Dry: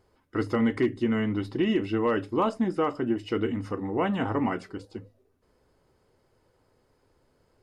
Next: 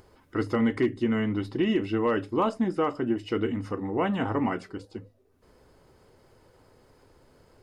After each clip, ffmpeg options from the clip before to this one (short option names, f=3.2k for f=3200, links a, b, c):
-af "acompressor=mode=upward:threshold=-48dB:ratio=2.5"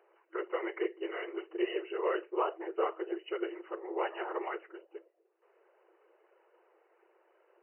-af "afftfilt=real='hypot(re,im)*cos(2*PI*random(0))':imag='hypot(re,im)*sin(2*PI*random(1))':win_size=512:overlap=0.75,afftfilt=real='re*between(b*sr/4096,330,3000)':imag='im*between(b*sr/4096,330,3000)':win_size=4096:overlap=0.75"